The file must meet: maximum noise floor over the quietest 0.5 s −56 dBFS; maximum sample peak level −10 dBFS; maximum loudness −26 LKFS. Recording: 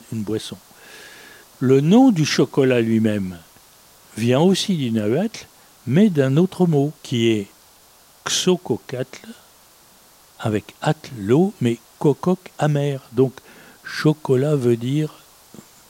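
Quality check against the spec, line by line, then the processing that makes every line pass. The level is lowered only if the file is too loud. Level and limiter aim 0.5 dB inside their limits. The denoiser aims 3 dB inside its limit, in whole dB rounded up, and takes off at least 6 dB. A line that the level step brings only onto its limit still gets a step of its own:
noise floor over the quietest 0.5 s −51 dBFS: out of spec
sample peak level −4.5 dBFS: out of spec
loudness −19.5 LKFS: out of spec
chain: level −7 dB

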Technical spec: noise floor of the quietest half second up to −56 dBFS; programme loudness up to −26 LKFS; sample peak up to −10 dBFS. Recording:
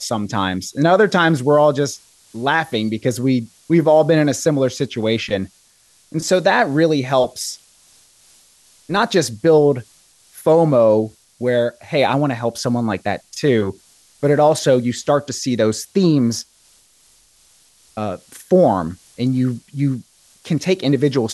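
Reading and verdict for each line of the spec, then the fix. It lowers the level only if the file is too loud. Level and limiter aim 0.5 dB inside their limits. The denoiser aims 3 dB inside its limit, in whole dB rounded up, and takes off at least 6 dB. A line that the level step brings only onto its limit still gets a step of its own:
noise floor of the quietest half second −54 dBFS: out of spec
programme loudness −17.5 LKFS: out of spec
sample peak −3.5 dBFS: out of spec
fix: level −9 dB

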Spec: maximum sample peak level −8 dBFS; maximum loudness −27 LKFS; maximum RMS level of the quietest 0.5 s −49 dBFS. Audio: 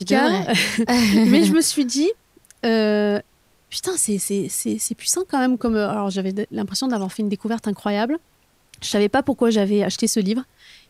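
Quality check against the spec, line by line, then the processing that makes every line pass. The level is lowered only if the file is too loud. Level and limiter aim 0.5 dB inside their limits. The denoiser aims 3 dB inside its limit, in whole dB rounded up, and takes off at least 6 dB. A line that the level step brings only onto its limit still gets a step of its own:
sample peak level −4.0 dBFS: out of spec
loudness −20.0 LKFS: out of spec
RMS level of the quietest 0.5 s −60 dBFS: in spec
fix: level −7.5 dB

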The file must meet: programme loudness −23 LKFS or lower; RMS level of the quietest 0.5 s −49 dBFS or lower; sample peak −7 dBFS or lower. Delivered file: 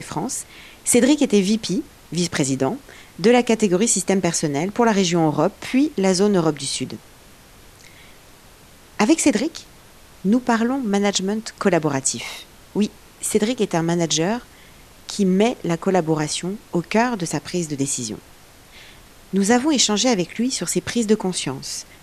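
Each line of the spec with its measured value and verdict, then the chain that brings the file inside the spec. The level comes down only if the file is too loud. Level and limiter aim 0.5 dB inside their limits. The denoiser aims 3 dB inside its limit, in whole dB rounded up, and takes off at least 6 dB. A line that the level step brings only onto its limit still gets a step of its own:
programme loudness −20.5 LKFS: out of spec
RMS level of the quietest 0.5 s −47 dBFS: out of spec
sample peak −4.5 dBFS: out of spec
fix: level −3 dB

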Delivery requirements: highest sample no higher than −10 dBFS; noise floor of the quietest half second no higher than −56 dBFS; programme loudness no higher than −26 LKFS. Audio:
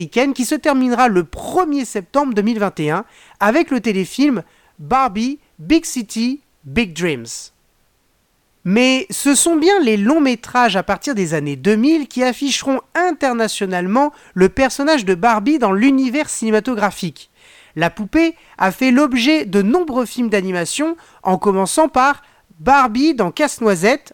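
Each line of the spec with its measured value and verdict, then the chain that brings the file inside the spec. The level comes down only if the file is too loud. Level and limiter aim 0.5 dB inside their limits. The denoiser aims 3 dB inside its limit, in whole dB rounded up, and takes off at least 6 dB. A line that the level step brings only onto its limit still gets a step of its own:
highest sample −2.0 dBFS: out of spec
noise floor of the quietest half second −61 dBFS: in spec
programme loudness −16.0 LKFS: out of spec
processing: level −10.5 dB

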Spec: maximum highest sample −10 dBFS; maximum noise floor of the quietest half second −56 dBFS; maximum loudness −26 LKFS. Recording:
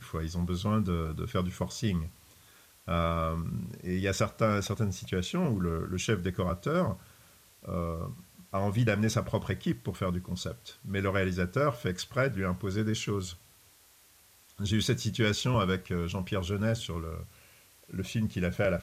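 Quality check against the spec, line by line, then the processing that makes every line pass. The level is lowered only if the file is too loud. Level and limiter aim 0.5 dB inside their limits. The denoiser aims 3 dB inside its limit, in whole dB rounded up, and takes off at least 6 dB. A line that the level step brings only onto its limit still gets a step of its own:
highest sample −13.5 dBFS: in spec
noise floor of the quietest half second −60 dBFS: in spec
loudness −31.5 LKFS: in spec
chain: no processing needed

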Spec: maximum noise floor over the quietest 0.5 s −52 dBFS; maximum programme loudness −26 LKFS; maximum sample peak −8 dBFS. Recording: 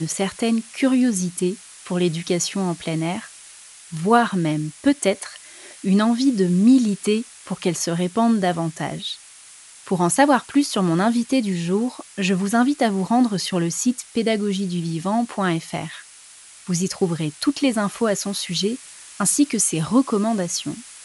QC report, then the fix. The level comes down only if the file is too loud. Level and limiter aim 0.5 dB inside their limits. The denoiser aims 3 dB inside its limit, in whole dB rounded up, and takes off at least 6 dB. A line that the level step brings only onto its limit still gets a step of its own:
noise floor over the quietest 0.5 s −45 dBFS: out of spec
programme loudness −21.0 LKFS: out of spec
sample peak −3.0 dBFS: out of spec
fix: broadband denoise 6 dB, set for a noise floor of −45 dBFS
level −5.5 dB

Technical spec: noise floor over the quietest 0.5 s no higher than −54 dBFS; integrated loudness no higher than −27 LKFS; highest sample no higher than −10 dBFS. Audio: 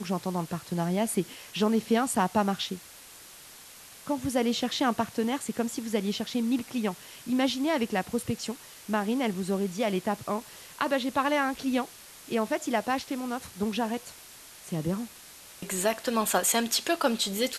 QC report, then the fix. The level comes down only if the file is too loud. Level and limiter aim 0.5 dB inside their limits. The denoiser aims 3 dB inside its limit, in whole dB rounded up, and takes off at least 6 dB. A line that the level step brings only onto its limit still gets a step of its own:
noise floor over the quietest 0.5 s −49 dBFS: out of spec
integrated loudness −29.0 LKFS: in spec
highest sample −10.5 dBFS: in spec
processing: broadband denoise 8 dB, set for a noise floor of −49 dBFS

